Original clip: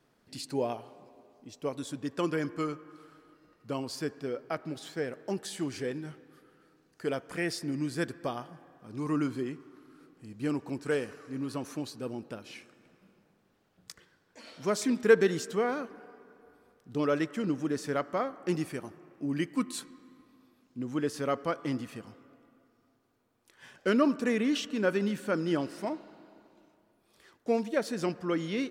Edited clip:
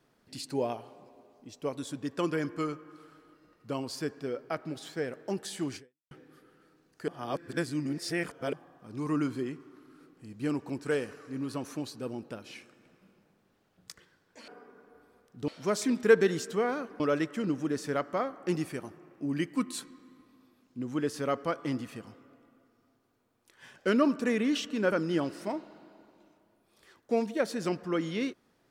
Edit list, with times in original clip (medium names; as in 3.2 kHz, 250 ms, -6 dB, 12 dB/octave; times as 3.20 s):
5.76–6.11 s: fade out exponential
7.08–8.53 s: reverse
16.00–17.00 s: move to 14.48 s
24.92–25.29 s: delete